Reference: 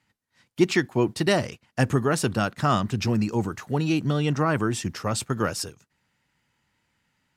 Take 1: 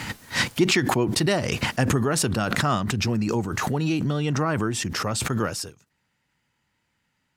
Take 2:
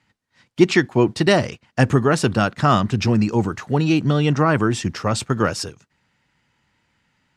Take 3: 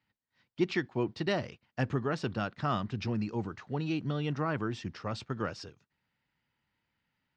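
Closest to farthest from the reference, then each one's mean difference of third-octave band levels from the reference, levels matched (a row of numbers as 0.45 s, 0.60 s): 2, 3, 1; 1.5 dB, 3.0 dB, 5.0 dB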